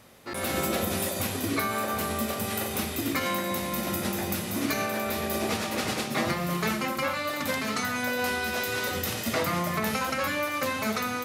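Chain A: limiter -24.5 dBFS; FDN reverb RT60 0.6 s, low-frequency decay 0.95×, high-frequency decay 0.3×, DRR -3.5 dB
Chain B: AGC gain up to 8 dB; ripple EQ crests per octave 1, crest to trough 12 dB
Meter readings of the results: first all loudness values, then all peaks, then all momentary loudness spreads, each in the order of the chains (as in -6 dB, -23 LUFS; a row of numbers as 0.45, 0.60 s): -27.5, -18.5 LUFS; -14.0, -4.0 dBFS; 4, 3 LU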